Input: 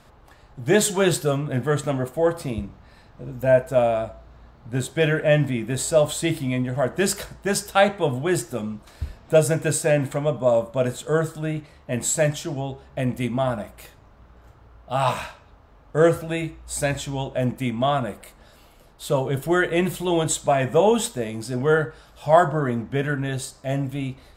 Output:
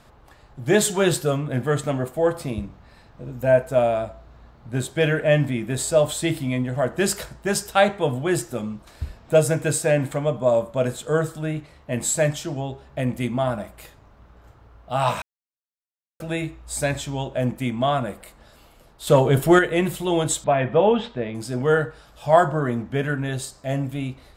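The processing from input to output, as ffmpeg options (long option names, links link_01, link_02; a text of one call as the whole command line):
ffmpeg -i in.wav -filter_complex "[0:a]asettb=1/sr,asplit=3[link_01][link_02][link_03];[link_01]atrim=end=19.074[link_04];[link_02]atrim=start=19.07:end=19.59,asetpts=PTS-STARTPTS,afade=type=in:duration=0.004:curve=qsin,afade=type=out:start_time=0.516:duration=0.004:curve=qsin,acontrast=82[link_05];[link_03]atrim=start=19.586[link_06];[link_04][link_05]acrossfade=duration=0.004:curve1=hsin:curve2=qsin[link_07];[link_07][link_06]acrossfade=duration=0.004:curve1=qsin:curve2=hsin,asettb=1/sr,asplit=3[link_08][link_09][link_10];[link_08]atrim=end=20.444[link_11];[link_09]atrim=start=20.44:end=21.35,asetpts=PTS-STARTPTS,afade=type=in:duration=0.004:curve=qsin,afade=type=out:start_time=0.906:duration=0.004:curve=qsin,lowpass=frequency=3500:width=0.5412,lowpass=frequency=3500:width=1.3066[link_12];[link_10]atrim=start=21.346[link_13];[link_11][link_12]acrossfade=duration=0.004:curve1=hsin:curve2=qsin[link_14];[link_14][link_13]acrossfade=duration=0.004:curve1=qsin:curve2=hsin,asplit=3[link_15][link_16][link_17];[link_15]atrim=end=15.22,asetpts=PTS-STARTPTS,afade=type=out:start_time=15.216:duration=0.004:curve=hsin[link_18];[link_16]atrim=start=15.22:end=16.2,asetpts=PTS-STARTPTS,volume=0[link_19];[link_17]atrim=start=16.2,asetpts=PTS-STARTPTS,afade=type=in:duration=0.004:curve=hsin[link_20];[link_18][link_19][link_20]concat=n=3:v=0:a=1" out.wav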